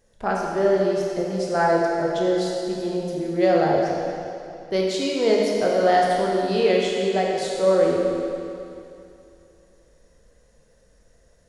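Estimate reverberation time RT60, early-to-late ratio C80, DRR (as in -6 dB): 2.7 s, 1.0 dB, -3.0 dB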